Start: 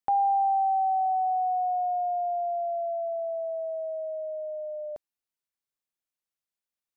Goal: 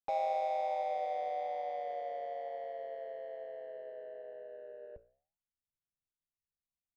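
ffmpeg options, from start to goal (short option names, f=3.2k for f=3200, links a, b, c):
-filter_complex "[0:a]asubboost=boost=7:cutoff=200,asplit=3[a][b][c];[b]asetrate=29433,aresample=44100,atempo=1.49831,volume=-9dB[d];[c]asetrate=35002,aresample=44100,atempo=1.25992,volume=-3dB[e];[a][d][e]amix=inputs=3:normalize=0,adynamicsmooth=sensitivity=2.5:basefreq=580,flanger=delay=9.7:depth=8.1:regen=81:speed=1.1:shape=triangular,volume=-6.5dB"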